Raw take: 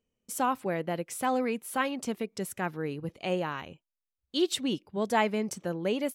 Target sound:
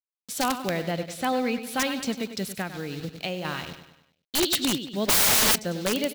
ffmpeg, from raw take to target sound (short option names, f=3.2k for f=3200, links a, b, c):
-filter_complex "[0:a]acrusher=bits=7:mix=0:aa=0.000001,asettb=1/sr,asplit=3[a][b][c];[a]atrim=end=0.914[d];[b]atrim=start=0.91:end=1.67,asetpts=PTS-STARTPTS,afade=t=in:d=0.004:c=qsin,afade=t=out:st=0.756:d=0.004:c=qsin,highshelf=f=5.3k:g=-6.5[e];[c]atrim=start=1.666[f];[d][e]acrossfade=d=0.004:c1=hsin:c2=qsin[g];[g][f]acrossfade=d=0.004:c1=qsin:c2=hsin,aecho=1:1:99|198|297|396|495:0.282|0.138|0.0677|0.0332|0.0162,asettb=1/sr,asplit=3[h][i][j];[h]atrim=end=2.614[k];[i]atrim=start=2.61:end=3.45,asetpts=PTS-STARTPTS,afade=t=in:d=0.004:c=qsin,afade=t=out:st=0.836:d=0.004:c=qsin,acompressor=threshold=-32dB:ratio=4[l];[j]atrim=start=3.446[m];[k][l]acrossfade=d=0.004:c1=hsin:c2=qsin[n];[n][m]acrossfade=d=0.004:c1=qsin:c2=hsin,asplit=3[o][p][q];[o]afade=t=out:st=5.08:d=0.02[r];[p]aeval=exprs='0.224*sin(PI/2*8.91*val(0)/0.224)':c=same,afade=t=in:st=5.08:d=0.02,afade=t=out:st=5.54:d=0.02[s];[q]afade=t=in:st=5.54:d=0.02[t];[r][s][t]amix=inputs=3:normalize=0,equalizer=f=400:t=o:w=0.67:g=-5,equalizer=f=1k:t=o:w=0.67:g=-6,equalizer=f=4k:t=o:w=0.67:g=9,equalizer=f=10k:t=o:w=0.67:g=-5,aeval=exprs='(mod(10*val(0)+1,2)-1)/10':c=same,volume=5dB"